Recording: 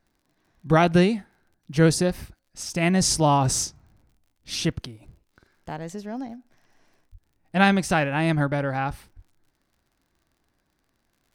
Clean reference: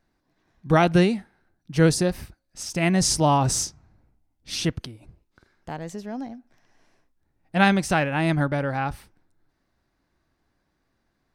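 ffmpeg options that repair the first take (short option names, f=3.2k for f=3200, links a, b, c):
-filter_complex "[0:a]adeclick=t=4,asplit=3[a][b][c];[a]afade=t=out:st=7.11:d=0.02[d];[b]highpass=f=140:w=0.5412,highpass=f=140:w=1.3066,afade=t=in:st=7.11:d=0.02,afade=t=out:st=7.23:d=0.02[e];[c]afade=t=in:st=7.23:d=0.02[f];[d][e][f]amix=inputs=3:normalize=0,asplit=3[g][h][i];[g]afade=t=out:st=9.15:d=0.02[j];[h]highpass=f=140:w=0.5412,highpass=f=140:w=1.3066,afade=t=in:st=9.15:d=0.02,afade=t=out:st=9.27:d=0.02[k];[i]afade=t=in:st=9.27:d=0.02[l];[j][k][l]amix=inputs=3:normalize=0"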